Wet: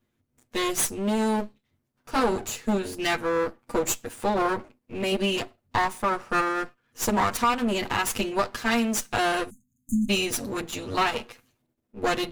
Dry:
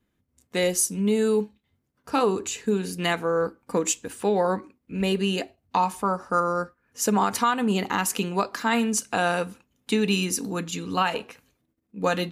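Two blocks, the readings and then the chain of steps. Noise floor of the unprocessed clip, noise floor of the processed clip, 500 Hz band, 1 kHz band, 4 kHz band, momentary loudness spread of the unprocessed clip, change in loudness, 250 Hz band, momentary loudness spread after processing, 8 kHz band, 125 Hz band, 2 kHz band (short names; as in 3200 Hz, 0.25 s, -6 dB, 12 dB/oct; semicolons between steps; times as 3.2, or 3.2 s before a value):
-76 dBFS, -77 dBFS, -2.5 dB, -0.5 dB, +0.5 dB, 8 LU, -1.0 dB, -1.5 dB, 7 LU, -2.5 dB, -4.5 dB, +1.0 dB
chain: minimum comb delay 8.4 ms; spectral delete 9.5–10.1, 280–6200 Hz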